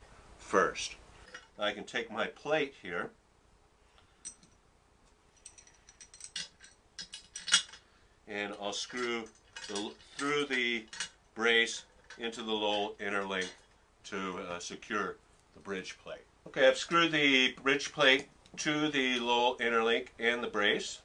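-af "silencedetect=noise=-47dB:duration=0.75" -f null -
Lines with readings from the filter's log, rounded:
silence_start: 3.09
silence_end: 3.98 | silence_duration: 0.89
silence_start: 4.43
silence_end: 5.46 | silence_duration: 1.03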